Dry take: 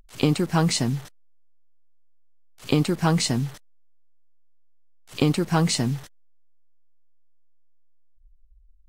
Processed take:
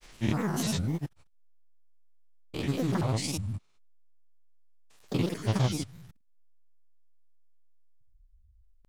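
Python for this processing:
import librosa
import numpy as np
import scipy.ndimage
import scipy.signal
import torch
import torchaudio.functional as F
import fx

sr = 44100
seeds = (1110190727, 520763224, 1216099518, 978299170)

y = fx.spec_steps(x, sr, hold_ms=200)
y = fx.dereverb_blind(y, sr, rt60_s=0.87)
y = fx.granulator(y, sr, seeds[0], grain_ms=100.0, per_s=20.0, spray_ms=100.0, spread_st=7)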